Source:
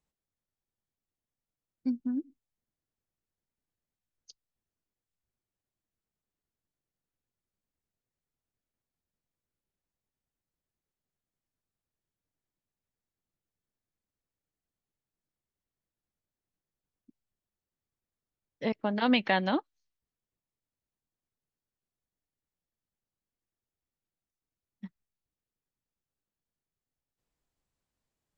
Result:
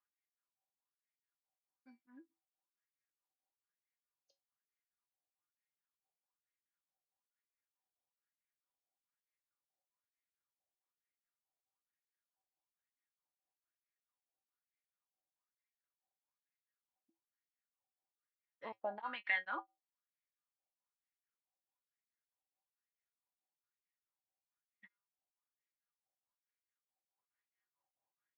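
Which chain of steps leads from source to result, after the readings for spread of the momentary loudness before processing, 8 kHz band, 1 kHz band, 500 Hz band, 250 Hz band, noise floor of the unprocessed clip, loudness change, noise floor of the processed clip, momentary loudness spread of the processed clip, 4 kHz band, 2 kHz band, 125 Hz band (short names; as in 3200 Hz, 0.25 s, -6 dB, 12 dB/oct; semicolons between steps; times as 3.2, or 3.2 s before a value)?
24 LU, n/a, -11.5 dB, -14.5 dB, -29.0 dB, under -85 dBFS, -10.0 dB, under -85 dBFS, 14 LU, -18.0 dB, -5.5 dB, under -30 dB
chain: compressor, threshold -29 dBFS, peak gain reduction 9 dB; resonator 110 Hz, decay 0.19 s, harmonics odd, mix 80%; wah 1.1 Hz 710–2100 Hz, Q 5.5; beating tremolo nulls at 4.6 Hz; gain +16.5 dB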